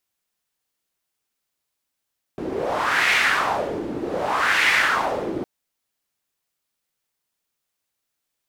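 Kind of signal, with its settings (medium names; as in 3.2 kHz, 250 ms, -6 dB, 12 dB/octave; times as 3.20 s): wind-like swept noise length 3.06 s, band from 320 Hz, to 2.1 kHz, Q 3, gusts 2, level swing 10 dB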